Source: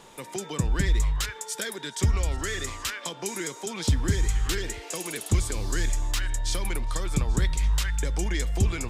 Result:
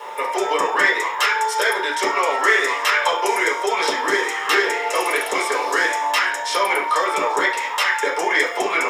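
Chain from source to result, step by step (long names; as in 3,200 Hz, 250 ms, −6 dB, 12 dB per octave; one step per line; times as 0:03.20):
high-pass filter 490 Hz 24 dB per octave
bit-depth reduction 10 bits, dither none
convolution reverb RT60 0.50 s, pre-delay 3 ms, DRR −6 dB
level +3.5 dB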